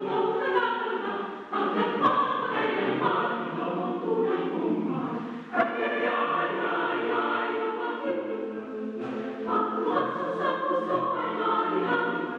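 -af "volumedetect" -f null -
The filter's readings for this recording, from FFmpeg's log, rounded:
mean_volume: -27.6 dB
max_volume: -10.6 dB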